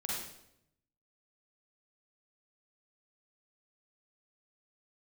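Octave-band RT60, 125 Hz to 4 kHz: 1.2, 1.0, 0.85, 0.70, 0.70, 0.65 seconds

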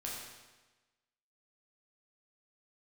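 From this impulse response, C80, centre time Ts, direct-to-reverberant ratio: 2.5 dB, 74 ms, −4.5 dB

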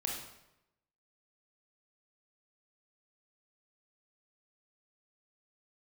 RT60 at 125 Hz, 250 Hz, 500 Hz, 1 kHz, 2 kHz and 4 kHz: 1.0, 0.90, 0.90, 0.85, 0.80, 0.70 seconds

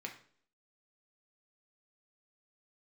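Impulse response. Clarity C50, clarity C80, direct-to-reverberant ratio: 10.0 dB, 14.0 dB, 1.0 dB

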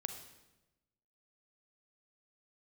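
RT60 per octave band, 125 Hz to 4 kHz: 1.3, 1.2, 1.1, 0.95, 0.90, 0.85 seconds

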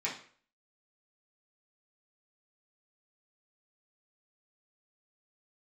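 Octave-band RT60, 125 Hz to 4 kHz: 0.45, 0.45, 0.50, 0.45, 0.45, 0.40 seconds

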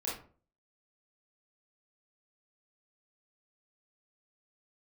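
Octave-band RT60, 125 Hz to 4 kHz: 0.50, 0.50, 0.45, 0.40, 0.30, 0.25 seconds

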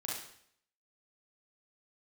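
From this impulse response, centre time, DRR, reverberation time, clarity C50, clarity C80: 57 ms, −5.0 dB, 0.65 s, 0.5 dB, 6.0 dB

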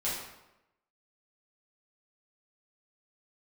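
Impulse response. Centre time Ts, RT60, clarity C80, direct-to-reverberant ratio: 60 ms, 0.95 s, 4.5 dB, −9.0 dB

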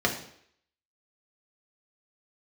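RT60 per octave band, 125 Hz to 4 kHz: 0.55, 0.60, 0.65, 0.65, 0.70, 0.65 seconds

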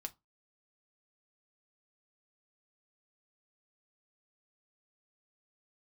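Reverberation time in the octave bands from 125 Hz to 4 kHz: 0.25, 0.25, 0.20, 0.25, 0.15, 0.15 seconds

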